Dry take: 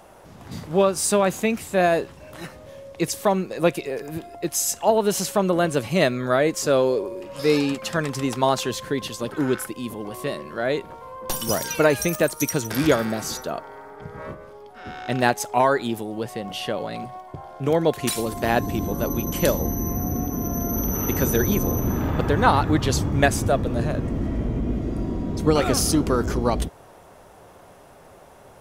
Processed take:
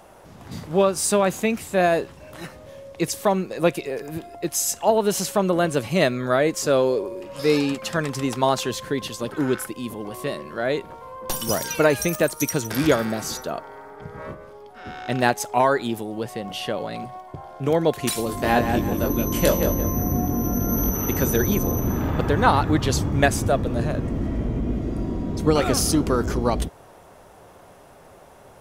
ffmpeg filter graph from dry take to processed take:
-filter_complex "[0:a]asettb=1/sr,asplit=3[s0][s1][s2];[s0]atrim=end=18.274[s3];[s1]atrim=start=18.27:end=20.9,asetpts=PTS-STARTPTS,afade=t=in:d=0.004:c=qsin,afade=t=out:st=2.626:d=0.004:c=qsin,asplit=2[s4][s5];[s5]adelay=21,volume=0.596[s6];[s4][s6]amix=inputs=2:normalize=0,atrim=end_sample=115983,asplit=2[s7][s8];[s8]adelay=175,lowpass=f=2900:p=1,volume=0.531,asplit=2[s9][s10];[s10]adelay=175,lowpass=f=2900:p=1,volume=0.38,asplit=2[s11][s12];[s12]adelay=175,lowpass=f=2900:p=1,volume=0.38,asplit=2[s13][s14];[s14]adelay=175,lowpass=f=2900:p=1,volume=0.38,asplit=2[s15][s16];[s16]adelay=175,lowpass=f=2900:p=1,volume=0.38[s17];[s7][s9][s11][s13][s15][s17]amix=inputs=6:normalize=0,atrim=end_sample=115983[s18];[s2]atrim=start=20.896[s19];[s3][s18]acrossfade=d=0.004:c1=hsin:c2=qsin[s20];[s20][s19]acrossfade=d=0.004:c1=qsin:c2=hsin"

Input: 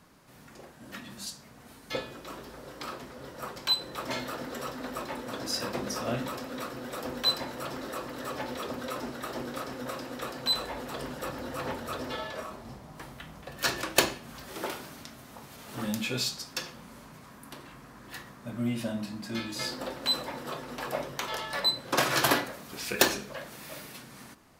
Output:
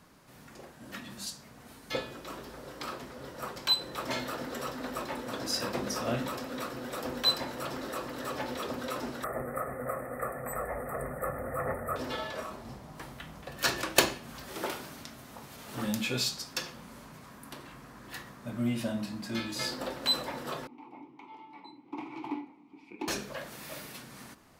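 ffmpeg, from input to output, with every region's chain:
-filter_complex "[0:a]asettb=1/sr,asplit=3[s0][s1][s2];[s0]atrim=end=9.244[s3];[s1]atrim=start=9.24:end=11.96,asetpts=PTS-STARTPTS,afade=t=in:d=0.004:c=qsin,afade=t=out:st=2.716:d=0.004:c=qsin,asuperstop=centerf=4400:order=20:qfactor=0.74,equalizer=f=370:t=o:w=0.42:g=2.5,aecho=1:1:1.6:0.65,atrim=end_sample=119952[s4];[s2]atrim=start=11.956[s5];[s3][s4]acrossfade=d=0.004:c1=hsin:c2=qsin[s6];[s6][s5]acrossfade=d=0.004:c1=qsin:c2=hsin,asettb=1/sr,asplit=3[s7][s8][s9];[s7]atrim=end=20.674[s10];[s8]atrim=start=20.67:end=23.08,asetpts=PTS-STARTPTS,afade=t=in:d=0.004:c=qsin,afade=t=out:st=2.406:d=0.004:c=qsin,asplit=3[s11][s12][s13];[s11]bandpass=f=300:t=q:w=8,volume=1[s14];[s12]bandpass=f=870:t=q:w=8,volume=0.501[s15];[s13]bandpass=f=2240:t=q:w=8,volume=0.355[s16];[s14][s15][s16]amix=inputs=3:normalize=0,highshelf=f=2400:g=-9.5,bandreject=f=1700:w=19[s17];[s9]atrim=start=23.076[s18];[s10][s17]acrossfade=d=0.004:c1=hsin:c2=qsin[s19];[s19][s18]acrossfade=d=0.004:c1=qsin:c2=hsin"

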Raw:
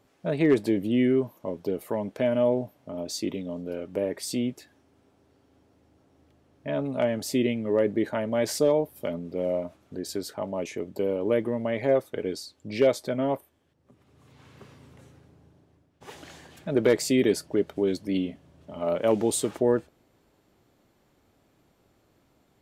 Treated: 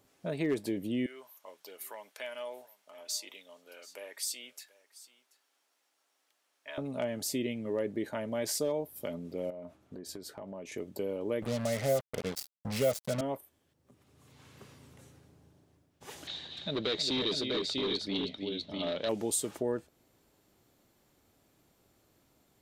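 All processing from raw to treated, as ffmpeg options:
-filter_complex "[0:a]asettb=1/sr,asplit=3[s0][s1][s2];[s0]atrim=end=1.064[s3];[s1]atrim=start=1.06:end=6.78,asetpts=PTS-STARTPTS,afade=t=in:d=0.004:c=qsin,afade=t=out:st=5.716:d=0.004:c=qsin,highpass=1200,aecho=1:1:733:0.0891,atrim=end_sample=252252[s4];[s2]atrim=start=6.776[s5];[s3][s4]acrossfade=d=0.004:c1=hsin:c2=qsin[s6];[s6][s5]acrossfade=d=0.004:c1=qsin:c2=hsin,asettb=1/sr,asplit=3[s7][s8][s9];[s7]atrim=end=9.504[s10];[s8]atrim=start=9.5:end=10.72,asetpts=PTS-STARTPTS,afade=t=in:d=0.004:c=qsin,afade=t=out:st=1.216:d=0.004:c=qsin,highshelf=f=3200:g=-11,acompressor=threshold=0.0158:ratio=4:attack=3.2:release=140:knee=1:detection=peak,asplit=2[s11][s12];[s12]adelay=16,volume=0.237[s13];[s11][s13]amix=inputs=2:normalize=0,atrim=end_sample=53802[s14];[s9]atrim=start=10.716[s15];[s10][s14]acrossfade=d=0.004:c1=hsin:c2=qsin[s16];[s16][s15]acrossfade=d=0.004:c1=qsin:c2=hsin,asettb=1/sr,asplit=3[s17][s18][s19];[s17]atrim=end=11.424[s20];[s18]atrim=start=11.42:end=13.21,asetpts=PTS-STARTPTS,afade=t=in:d=0.004:c=qsin,afade=t=out:st=1.786:d=0.004:c=qsin,equalizer=f=150:t=o:w=2.3:g=7,aecho=1:1:1.5:0.85,atrim=end_sample=78939,acrusher=bits=4:mix=0:aa=0.5[s21];[s19]atrim=start=13.206[s22];[s20][s21]acrossfade=d=0.004:c1=hsin:c2=qsin[s23];[s23][s22]acrossfade=d=0.004:c1=qsin:c2=hsin,asettb=1/sr,asplit=3[s24][s25][s26];[s24]atrim=end=16.274[s27];[s25]atrim=start=16.27:end=19.09,asetpts=PTS-STARTPTS,afade=t=in:d=0.004:c=qsin,afade=t=out:st=2.816:d=0.004:c=qsin,aecho=1:1:316|647:0.335|0.501,atrim=end_sample=124362,asoftclip=type=hard:threshold=0.0944,lowpass=f=3800:t=q:w=14[s28];[s26]atrim=start=19.086[s29];[s27][s28]acrossfade=d=0.004:c1=hsin:c2=qsin[s30];[s30][s29]acrossfade=d=0.004:c1=qsin:c2=hsin,highshelf=f=4600:g=10.5,acompressor=threshold=0.0224:ratio=1.5,volume=0.596"

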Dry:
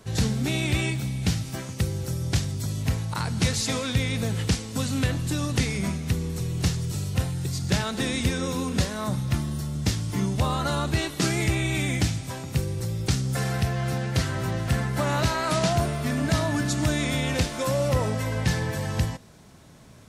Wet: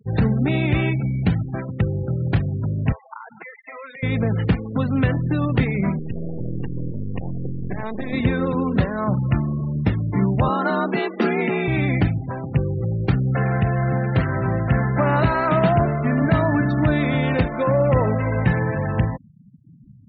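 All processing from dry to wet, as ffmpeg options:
-filter_complex "[0:a]asettb=1/sr,asplit=3[s0][s1][s2];[s0]atrim=end=2.924[s3];[s1]atrim=start=2.92:end=4.03,asetpts=PTS-STARTPTS,afade=t=in:d=0.004:c=qsin,afade=t=out:st=1.106:d=0.004:c=qsin,adynamicequalizer=threshold=0.00282:dfrequency=2000:dqfactor=7.5:tfrequency=2000:tqfactor=7.5:attack=5:release=100:ratio=0.375:range=3.5:mode=boostabove:tftype=bell,highpass=690,lowpass=3700,acompressor=threshold=0.0158:ratio=8:attack=3.2:release=140:knee=1:detection=peak[s4];[s2]atrim=start=4.026[s5];[s3][s4]acrossfade=d=0.004:c1=hsin:c2=qsin[s6];[s6][s5]acrossfade=d=0.004:c1=qsin:c2=hsin,asettb=1/sr,asplit=3[s7][s8][s9];[s7]atrim=end=5.994[s10];[s8]atrim=start=5.99:end=8.13,asetpts=PTS-STARTPTS,afade=t=in:d=0.004:c=qsin,afade=t=out:st=2.136:d=0.004:c=qsin,acompressor=threshold=0.0631:ratio=12:attack=3.2:release=140:knee=1:detection=peak,aeval=exprs='max(val(0),0)':c=same,asuperstop=centerf=1400:order=4:qfactor=5.9[s11];[s9]atrim=start=8.126[s12];[s10][s11]acrossfade=d=0.004:c1=hsin:c2=qsin[s13];[s13][s12]acrossfade=d=0.004:c1=qsin:c2=hsin,asettb=1/sr,asplit=3[s14][s15][s16];[s14]atrim=end=10.484[s17];[s15]atrim=start=10.48:end=11.68,asetpts=PTS-STARTPTS,afade=t=in:d=0.004:c=qsin,afade=t=out:st=1.196:d=0.004:c=qsin,highpass=f=160:w=0.5412,highpass=f=160:w=1.3066,afreqshift=44[s18];[s16]atrim=start=11.676[s19];[s17][s18]acrossfade=d=0.004:c1=hsin:c2=qsin[s20];[s20][s19]acrossfade=d=0.004:c1=qsin:c2=hsin,lowpass=2100,equalizer=f=78:w=4.5:g=-12,afftfilt=real='re*gte(hypot(re,im),0.0158)':imag='im*gte(hypot(re,im),0.0158)':win_size=1024:overlap=0.75,volume=2.24"

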